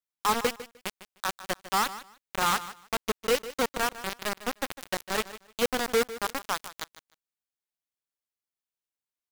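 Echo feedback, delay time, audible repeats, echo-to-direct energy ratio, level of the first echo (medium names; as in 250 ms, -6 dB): 18%, 152 ms, 2, -15.0 dB, -15.0 dB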